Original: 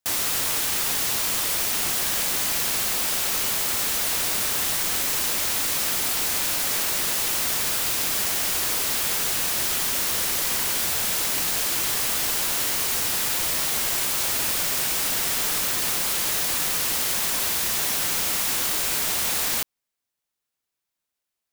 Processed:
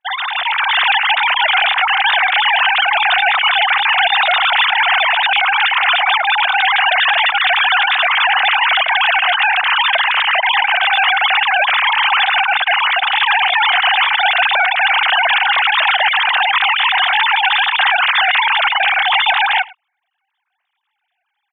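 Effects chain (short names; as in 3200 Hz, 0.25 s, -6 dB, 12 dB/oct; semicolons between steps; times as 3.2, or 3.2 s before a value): sine-wave speech; AGC gain up to 6.5 dB; on a send: echo 0.106 s -23 dB; on the sum: gain +4 dB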